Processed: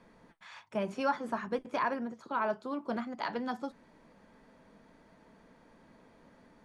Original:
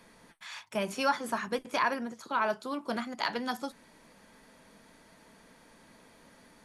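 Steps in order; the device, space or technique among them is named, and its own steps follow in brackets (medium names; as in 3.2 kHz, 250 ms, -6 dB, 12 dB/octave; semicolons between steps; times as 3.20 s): through cloth (low-pass 8.2 kHz 12 dB/octave; treble shelf 2 kHz -13 dB)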